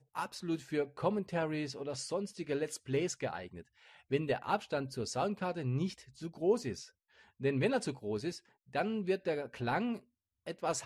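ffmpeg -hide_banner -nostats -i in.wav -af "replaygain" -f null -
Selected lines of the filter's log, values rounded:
track_gain = +15.8 dB
track_peak = 0.086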